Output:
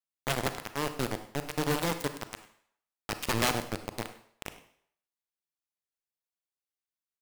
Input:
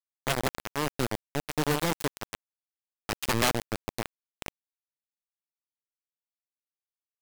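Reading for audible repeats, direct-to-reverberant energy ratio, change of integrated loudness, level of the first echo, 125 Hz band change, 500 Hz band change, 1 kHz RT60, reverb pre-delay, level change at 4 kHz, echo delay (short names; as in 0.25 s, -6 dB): 1, 9.0 dB, -2.0 dB, -18.5 dB, -2.0 dB, -2.0 dB, 0.65 s, 31 ms, -2.0 dB, 0.1 s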